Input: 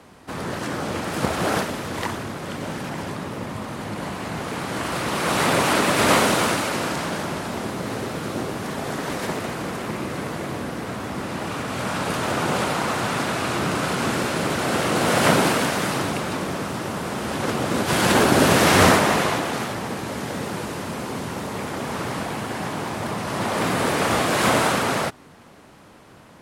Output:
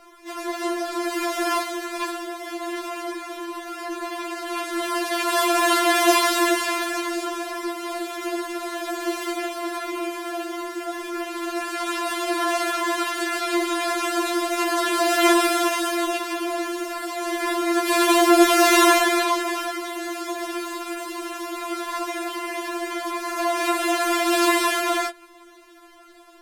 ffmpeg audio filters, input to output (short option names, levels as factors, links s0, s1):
-filter_complex "[0:a]asplit=3[s0][s1][s2];[s1]asetrate=52444,aresample=44100,atempo=0.840896,volume=0.891[s3];[s2]asetrate=58866,aresample=44100,atempo=0.749154,volume=0.158[s4];[s0][s3][s4]amix=inputs=3:normalize=0,afftfilt=real='re*4*eq(mod(b,16),0)':imag='im*4*eq(mod(b,16),0)':win_size=2048:overlap=0.75"